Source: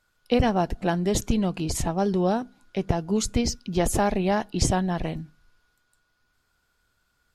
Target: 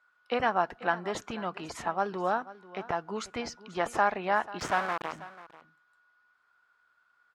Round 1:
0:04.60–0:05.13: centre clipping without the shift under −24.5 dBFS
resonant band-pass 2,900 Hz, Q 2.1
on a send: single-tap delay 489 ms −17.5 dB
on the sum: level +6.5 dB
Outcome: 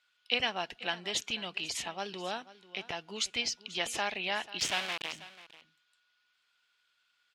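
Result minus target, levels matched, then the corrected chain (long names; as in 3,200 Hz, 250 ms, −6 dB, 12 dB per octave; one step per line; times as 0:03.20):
4,000 Hz band +14.0 dB
0:04.60–0:05.13: centre clipping without the shift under −24.5 dBFS
resonant band-pass 1,300 Hz, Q 2.1
on a send: single-tap delay 489 ms −17.5 dB
on the sum: level +6.5 dB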